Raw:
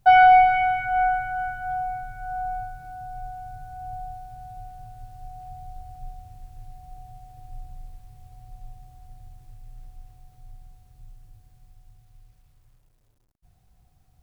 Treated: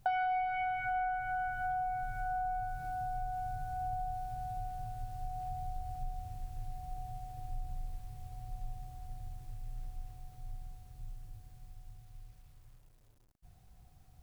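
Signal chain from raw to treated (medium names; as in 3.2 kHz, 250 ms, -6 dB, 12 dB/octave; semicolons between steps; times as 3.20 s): compression 6:1, threshold -34 dBFS, peak gain reduction 21 dB; trim +1 dB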